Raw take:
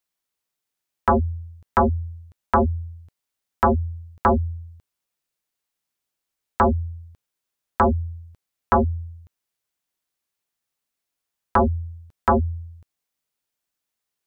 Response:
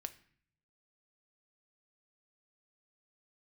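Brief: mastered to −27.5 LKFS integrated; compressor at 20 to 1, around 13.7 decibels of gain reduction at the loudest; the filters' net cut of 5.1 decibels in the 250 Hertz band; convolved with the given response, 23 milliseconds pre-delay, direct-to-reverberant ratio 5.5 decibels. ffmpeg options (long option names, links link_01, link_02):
-filter_complex "[0:a]equalizer=frequency=250:width_type=o:gain=-6,acompressor=threshold=-27dB:ratio=20,asplit=2[link_01][link_02];[1:a]atrim=start_sample=2205,adelay=23[link_03];[link_02][link_03]afir=irnorm=-1:irlink=0,volume=-2dB[link_04];[link_01][link_04]amix=inputs=2:normalize=0,volume=5dB"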